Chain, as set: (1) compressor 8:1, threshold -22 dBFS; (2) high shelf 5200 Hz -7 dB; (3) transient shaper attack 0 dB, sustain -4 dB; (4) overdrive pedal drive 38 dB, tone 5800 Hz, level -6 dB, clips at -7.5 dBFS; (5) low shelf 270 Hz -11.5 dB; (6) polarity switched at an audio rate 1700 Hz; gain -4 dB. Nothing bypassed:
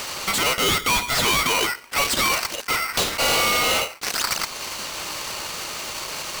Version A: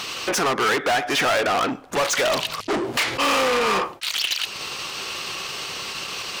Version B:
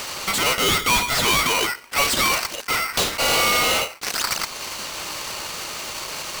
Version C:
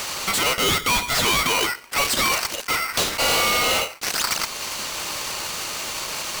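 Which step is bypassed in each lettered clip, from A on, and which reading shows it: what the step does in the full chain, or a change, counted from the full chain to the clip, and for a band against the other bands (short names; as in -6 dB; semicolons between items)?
6, momentary loudness spread change -1 LU; 1, mean gain reduction 2.5 dB; 2, momentary loudness spread change -2 LU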